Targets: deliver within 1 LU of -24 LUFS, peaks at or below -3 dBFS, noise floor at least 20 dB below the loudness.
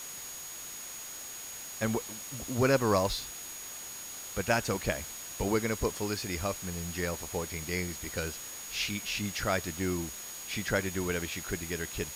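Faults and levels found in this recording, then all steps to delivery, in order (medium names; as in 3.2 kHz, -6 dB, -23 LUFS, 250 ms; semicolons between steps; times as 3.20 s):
steady tone 6.7 kHz; tone level -43 dBFS; noise floor -43 dBFS; noise floor target -53 dBFS; loudness -33.0 LUFS; peak level -13.5 dBFS; loudness target -24.0 LUFS
-> band-stop 6.7 kHz, Q 30; noise reduction 10 dB, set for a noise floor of -43 dBFS; trim +9 dB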